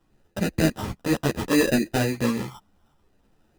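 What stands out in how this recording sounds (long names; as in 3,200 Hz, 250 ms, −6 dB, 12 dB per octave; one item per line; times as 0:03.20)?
phaser sweep stages 12, 0.67 Hz, lowest notch 540–1,100 Hz
aliases and images of a low sample rate 2,200 Hz, jitter 0%
a shimmering, thickened sound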